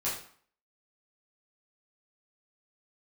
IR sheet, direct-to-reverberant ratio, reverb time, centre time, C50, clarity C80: -9.0 dB, 0.50 s, 39 ms, 4.5 dB, 8.5 dB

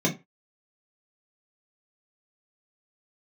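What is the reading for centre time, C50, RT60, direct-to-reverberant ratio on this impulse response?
16 ms, 13.5 dB, 0.25 s, -4.0 dB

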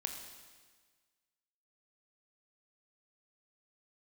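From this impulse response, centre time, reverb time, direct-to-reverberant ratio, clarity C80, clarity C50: 37 ms, 1.5 s, 3.5 dB, 7.0 dB, 6.0 dB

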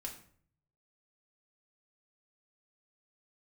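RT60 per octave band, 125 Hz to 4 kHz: 1.1, 0.70, 0.55, 0.50, 0.45, 0.40 s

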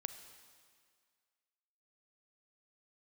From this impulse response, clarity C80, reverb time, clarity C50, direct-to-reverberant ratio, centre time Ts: 10.5 dB, 1.9 s, 10.0 dB, 9.0 dB, 19 ms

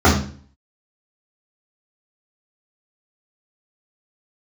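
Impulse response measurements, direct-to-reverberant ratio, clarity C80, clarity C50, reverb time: -10.0 dB, 11.0 dB, 6.0 dB, 0.45 s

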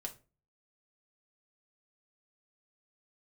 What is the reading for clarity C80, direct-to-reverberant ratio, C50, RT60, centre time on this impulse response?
21.5 dB, 1.5 dB, 14.5 dB, 0.35 s, 9 ms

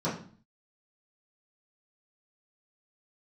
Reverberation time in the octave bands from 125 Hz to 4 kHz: 0.60, 0.60, 0.45, 0.45, 0.40, 0.40 s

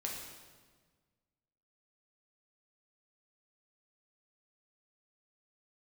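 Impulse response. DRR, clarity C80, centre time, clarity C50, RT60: -2.0 dB, 4.5 dB, 62 ms, 2.5 dB, 1.5 s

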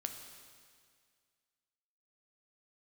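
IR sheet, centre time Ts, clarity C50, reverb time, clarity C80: 38 ms, 6.5 dB, 2.0 s, 8.0 dB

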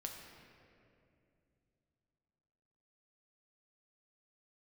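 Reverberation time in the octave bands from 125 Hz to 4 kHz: 3.8, 3.5, 3.0, 2.2, 2.2, 1.5 s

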